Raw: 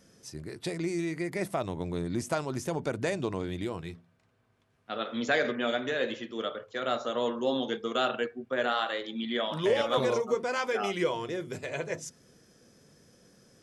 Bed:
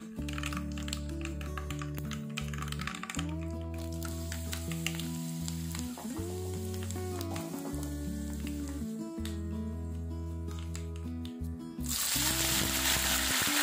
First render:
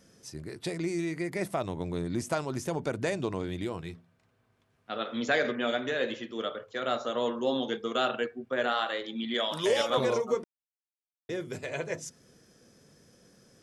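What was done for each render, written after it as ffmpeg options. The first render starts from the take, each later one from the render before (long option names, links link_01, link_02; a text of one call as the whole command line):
ffmpeg -i in.wav -filter_complex "[0:a]asettb=1/sr,asplit=3[link_01][link_02][link_03];[link_01]atrim=end=9.344[link_04];[link_02]atrim=start=9.34:end=9.9,asetpts=PTS-STARTPTS,afade=type=in:duration=0.004:curve=qsin,afade=type=out:start_time=0.556:duration=0.004:curve=qsin,bass=frequency=250:gain=-6,treble=frequency=4000:gain=12[link_05];[link_03]atrim=start=9.896[link_06];[link_04][link_05]acrossfade=duration=0.004:curve1=hsin:curve2=qsin[link_07];[link_07][link_06]acrossfade=duration=0.004:curve1=qsin:curve2=hsin,asplit=3[link_08][link_09][link_10];[link_08]atrim=end=10.44,asetpts=PTS-STARTPTS,afade=type=out:start_time=10.436:duration=0.004:curve=hsin[link_11];[link_09]atrim=start=10.44:end=11.29,asetpts=PTS-STARTPTS,volume=0[link_12];[link_10]atrim=start=11.29,asetpts=PTS-STARTPTS,afade=type=in:duration=0.004:curve=hsin[link_13];[link_11][link_12][link_13]concat=n=3:v=0:a=1" out.wav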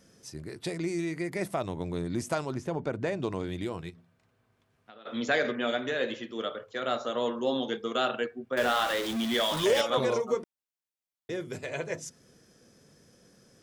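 ffmpeg -i in.wav -filter_complex "[0:a]asettb=1/sr,asplit=3[link_01][link_02][link_03];[link_01]atrim=end=2.544[link_04];[link_02]atrim=start=2.54:end=3.23,asetpts=PTS-STARTPTS,afade=type=in:duration=0.004:curve=qsin,afade=type=out:start_time=0.686:duration=0.004:curve=qsin,aemphasis=mode=reproduction:type=75kf[link_05];[link_03]atrim=start=3.226[link_06];[link_04][link_05]acrossfade=duration=0.004:curve1=hsin:curve2=qsin[link_07];[link_07][link_06]acrossfade=duration=0.004:curve1=qsin:curve2=hsin,asplit=3[link_08][link_09][link_10];[link_08]afade=type=out:start_time=3.89:duration=0.02[link_11];[link_09]acompressor=threshold=-47dB:ratio=10:attack=3.2:release=140:knee=1:detection=peak,afade=type=in:start_time=3.89:duration=0.02,afade=type=out:start_time=5.05:duration=0.02[link_12];[link_10]afade=type=in:start_time=5.05:duration=0.02[link_13];[link_11][link_12][link_13]amix=inputs=3:normalize=0,asettb=1/sr,asplit=3[link_14][link_15][link_16];[link_14]atrim=end=8.574[link_17];[link_15]atrim=start=8.57:end=9.81,asetpts=PTS-STARTPTS,afade=type=in:duration=0.004:curve=qsin,afade=type=out:start_time=1.236:duration=0.004:curve=qsin,aeval=exprs='val(0)+0.5*0.0299*sgn(val(0))':channel_layout=same[link_18];[link_16]atrim=start=9.806[link_19];[link_17][link_18]acrossfade=duration=0.004:curve1=hsin:curve2=qsin[link_20];[link_20][link_19]acrossfade=duration=0.004:curve1=qsin:curve2=hsin" out.wav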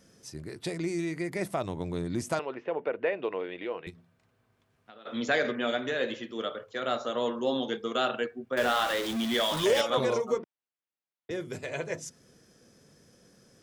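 ffmpeg -i in.wav -filter_complex "[0:a]asettb=1/sr,asplit=3[link_01][link_02][link_03];[link_01]atrim=end=2.394[link_04];[link_02]atrim=start=2.39:end=3.87,asetpts=PTS-STARTPTS,afade=type=in:duration=0.004:curve=qsin,afade=type=out:start_time=1.476:duration=0.004:curve=qsin,highpass=420,equalizer=frequency=480:width_type=q:width=4:gain=8,equalizer=frequency=1900:width_type=q:width=4:gain=4,equalizer=frequency=2700:width_type=q:width=4:gain=7,lowpass=frequency=3100:width=0.5412,lowpass=frequency=3100:width=1.3066[link_05];[link_03]atrim=start=3.866[link_06];[link_04][link_05]acrossfade=duration=0.004:curve1=hsin:curve2=qsin[link_07];[link_07][link_06]acrossfade=duration=0.004:curve1=qsin:curve2=hsin,asettb=1/sr,asplit=3[link_08][link_09][link_10];[link_08]atrim=end=10.384[link_11];[link_09]atrim=start=10.38:end=11.31,asetpts=PTS-STARTPTS,afade=type=in:duration=0.004:curve=qsin,afade=type=out:start_time=0.926:duration=0.004:curve=qsin,highpass=120,lowpass=3100[link_12];[link_10]atrim=start=11.306[link_13];[link_11][link_12]acrossfade=duration=0.004:curve1=hsin:curve2=qsin[link_14];[link_14][link_13]acrossfade=duration=0.004:curve1=qsin:curve2=hsin" out.wav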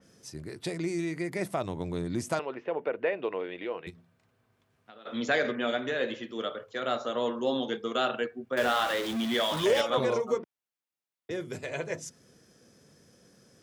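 ffmpeg -i in.wav -af "highpass=51,adynamicequalizer=threshold=0.00794:dfrequency=3800:dqfactor=0.7:tfrequency=3800:tqfactor=0.7:attack=5:release=100:ratio=0.375:range=2:mode=cutabove:tftype=highshelf" out.wav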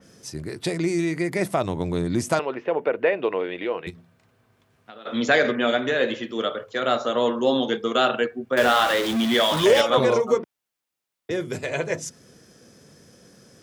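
ffmpeg -i in.wav -af "volume=8dB" out.wav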